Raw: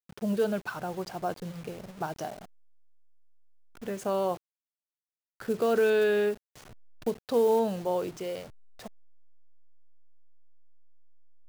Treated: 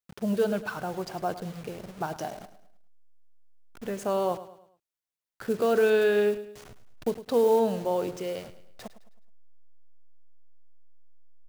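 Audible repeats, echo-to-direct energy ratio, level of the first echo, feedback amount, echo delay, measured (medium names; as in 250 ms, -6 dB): 3, -13.5 dB, -14.5 dB, 41%, 106 ms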